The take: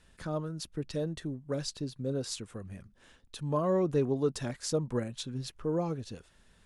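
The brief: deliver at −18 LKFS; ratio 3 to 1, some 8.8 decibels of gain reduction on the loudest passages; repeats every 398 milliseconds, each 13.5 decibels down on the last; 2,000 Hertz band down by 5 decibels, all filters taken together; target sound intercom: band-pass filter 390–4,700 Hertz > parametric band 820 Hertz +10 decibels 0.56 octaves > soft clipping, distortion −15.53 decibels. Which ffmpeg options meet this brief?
ffmpeg -i in.wav -af "equalizer=frequency=2000:width_type=o:gain=-7.5,acompressor=threshold=-36dB:ratio=3,highpass=390,lowpass=4700,equalizer=frequency=820:width_type=o:width=0.56:gain=10,aecho=1:1:398|796:0.211|0.0444,asoftclip=threshold=-33.5dB,volume=26.5dB" out.wav

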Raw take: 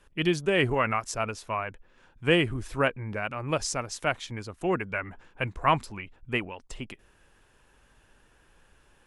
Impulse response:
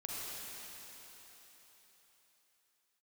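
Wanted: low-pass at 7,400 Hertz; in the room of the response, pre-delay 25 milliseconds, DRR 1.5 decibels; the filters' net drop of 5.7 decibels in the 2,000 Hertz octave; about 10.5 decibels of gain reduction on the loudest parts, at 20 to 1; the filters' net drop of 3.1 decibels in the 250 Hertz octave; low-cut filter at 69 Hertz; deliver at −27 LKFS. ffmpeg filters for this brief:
-filter_complex "[0:a]highpass=69,lowpass=7400,equalizer=frequency=250:width_type=o:gain=-5,equalizer=frequency=2000:width_type=o:gain=-7.5,acompressor=threshold=-29dB:ratio=20,asplit=2[link_01][link_02];[1:a]atrim=start_sample=2205,adelay=25[link_03];[link_02][link_03]afir=irnorm=-1:irlink=0,volume=-3dB[link_04];[link_01][link_04]amix=inputs=2:normalize=0,volume=8dB"

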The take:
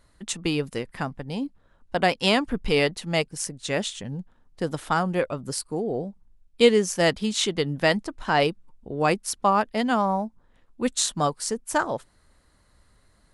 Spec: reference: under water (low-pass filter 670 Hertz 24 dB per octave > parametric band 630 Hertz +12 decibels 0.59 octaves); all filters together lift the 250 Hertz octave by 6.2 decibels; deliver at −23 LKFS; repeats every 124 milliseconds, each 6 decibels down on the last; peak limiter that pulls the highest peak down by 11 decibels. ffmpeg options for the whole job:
ffmpeg -i in.wav -af "equalizer=frequency=250:width_type=o:gain=7,alimiter=limit=-12dB:level=0:latency=1,lowpass=frequency=670:width=0.5412,lowpass=frequency=670:width=1.3066,equalizer=frequency=630:width_type=o:width=0.59:gain=12,aecho=1:1:124|248|372|496|620|744:0.501|0.251|0.125|0.0626|0.0313|0.0157" out.wav

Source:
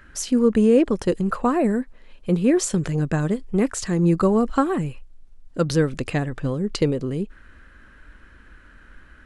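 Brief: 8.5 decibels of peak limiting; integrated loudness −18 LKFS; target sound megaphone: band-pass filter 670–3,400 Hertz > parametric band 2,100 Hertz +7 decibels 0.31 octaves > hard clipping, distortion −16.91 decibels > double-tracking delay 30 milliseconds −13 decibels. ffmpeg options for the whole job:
ffmpeg -i in.wav -filter_complex "[0:a]alimiter=limit=-15dB:level=0:latency=1,highpass=670,lowpass=3400,equalizer=frequency=2100:width_type=o:width=0.31:gain=7,asoftclip=type=hard:threshold=-23dB,asplit=2[link_01][link_02];[link_02]adelay=30,volume=-13dB[link_03];[link_01][link_03]amix=inputs=2:normalize=0,volume=16.5dB" out.wav

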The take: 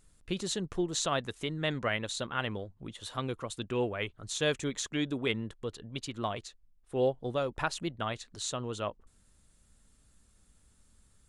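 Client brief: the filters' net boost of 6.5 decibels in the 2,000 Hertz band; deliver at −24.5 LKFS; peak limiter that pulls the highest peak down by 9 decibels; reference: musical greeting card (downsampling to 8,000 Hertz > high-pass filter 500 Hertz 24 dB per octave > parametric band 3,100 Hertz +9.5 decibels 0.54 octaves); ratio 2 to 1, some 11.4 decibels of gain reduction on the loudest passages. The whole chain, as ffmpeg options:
ffmpeg -i in.wav -af "equalizer=frequency=2000:width_type=o:gain=5.5,acompressor=threshold=-45dB:ratio=2,alimiter=level_in=8.5dB:limit=-24dB:level=0:latency=1,volume=-8.5dB,aresample=8000,aresample=44100,highpass=frequency=500:width=0.5412,highpass=frequency=500:width=1.3066,equalizer=frequency=3100:width_type=o:width=0.54:gain=9.5,volume=20dB" out.wav

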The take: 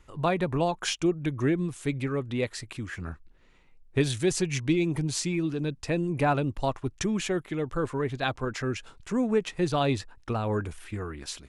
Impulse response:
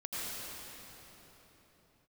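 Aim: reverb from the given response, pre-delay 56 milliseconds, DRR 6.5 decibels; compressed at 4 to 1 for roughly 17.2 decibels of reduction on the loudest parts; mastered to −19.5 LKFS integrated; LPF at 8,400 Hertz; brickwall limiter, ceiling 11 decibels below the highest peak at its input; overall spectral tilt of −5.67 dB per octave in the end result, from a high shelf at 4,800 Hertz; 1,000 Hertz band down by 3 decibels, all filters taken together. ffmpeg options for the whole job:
-filter_complex "[0:a]lowpass=8400,equalizer=frequency=1000:width_type=o:gain=-4,highshelf=frequency=4800:gain=-8.5,acompressor=threshold=-42dB:ratio=4,alimiter=level_in=15dB:limit=-24dB:level=0:latency=1,volume=-15dB,asplit=2[link_01][link_02];[1:a]atrim=start_sample=2205,adelay=56[link_03];[link_02][link_03]afir=irnorm=-1:irlink=0,volume=-10.5dB[link_04];[link_01][link_04]amix=inputs=2:normalize=0,volume=27.5dB"

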